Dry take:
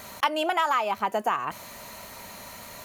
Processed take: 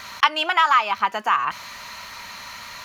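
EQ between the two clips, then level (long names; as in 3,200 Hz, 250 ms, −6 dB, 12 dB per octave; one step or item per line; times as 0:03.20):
low-shelf EQ 150 Hz +6.5 dB
flat-topped bell 2,400 Hz +14.5 dB 3 octaves
−5.5 dB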